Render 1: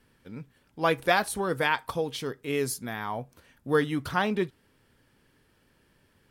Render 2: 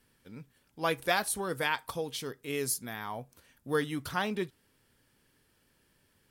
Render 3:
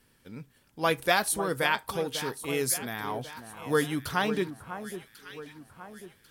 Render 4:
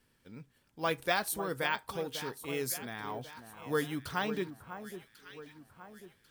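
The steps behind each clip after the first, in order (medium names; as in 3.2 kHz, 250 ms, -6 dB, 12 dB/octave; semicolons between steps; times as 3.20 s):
treble shelf 4.2 kHz +9.5 dB; trim -6 dB
echo whose repeats swap between lows and highs 547 ms, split 1.5 kHz, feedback 65%, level -10 dB; trim +4 dB
careless resampling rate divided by 2×, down filtered, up hold; trim -6 dB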